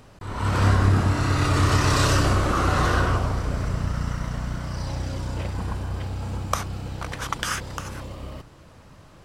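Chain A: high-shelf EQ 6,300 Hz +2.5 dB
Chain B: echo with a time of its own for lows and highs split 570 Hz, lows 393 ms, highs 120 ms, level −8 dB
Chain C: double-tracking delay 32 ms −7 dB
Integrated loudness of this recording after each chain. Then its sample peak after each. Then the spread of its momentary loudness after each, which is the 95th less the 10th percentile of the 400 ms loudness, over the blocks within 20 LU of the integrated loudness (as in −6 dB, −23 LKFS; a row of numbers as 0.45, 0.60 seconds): −24.0, −23.5, −22.5 LKFS; −5.0, −5.0, −5.0 dBFS; 14, 13, 14 LU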